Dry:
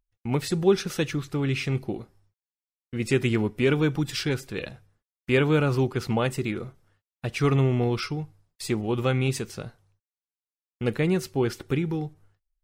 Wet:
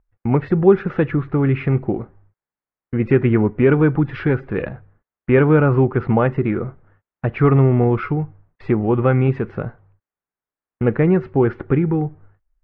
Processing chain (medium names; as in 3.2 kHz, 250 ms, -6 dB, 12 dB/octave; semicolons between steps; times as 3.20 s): low-pass 1.8 kHz 24 dB/octave; in parallel at -2 dB: compression, threshold -30 dBFS, peak gain reduction 14.5 dB; on the sum: trim +6.5 dB